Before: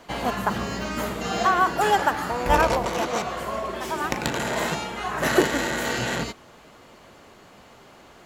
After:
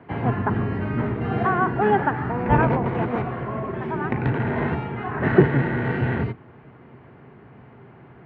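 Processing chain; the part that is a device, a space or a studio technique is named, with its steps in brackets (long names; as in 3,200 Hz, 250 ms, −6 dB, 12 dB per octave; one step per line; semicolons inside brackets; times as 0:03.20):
sub-octave bass pedal (sub-octave generator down 1 octave, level +3 dB; loudspeaker in its box 76–2,100 Hz, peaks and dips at 130 Hz +9 dB, 240 Hz +5 dB, 400 Hz +6 dB, 570 Hz −6 dB, 1,200 Hz −4 dB)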